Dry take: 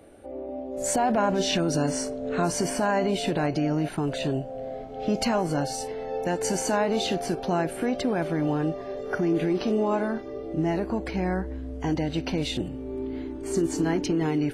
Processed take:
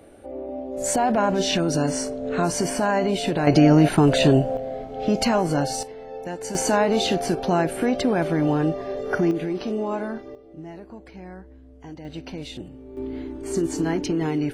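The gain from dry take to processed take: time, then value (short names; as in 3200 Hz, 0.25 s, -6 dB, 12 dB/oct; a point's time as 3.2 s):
+2.5 dB
from 3.47 s +11 dB
from 4.57 s +4 dB
from 5.83 s -5 dB
from 6.55 s +4.5 dB
from 9.31 s -2 dB
from 10.35 s -13 dB
from 12.05 s -7 dB
from 12.97 s +1 dB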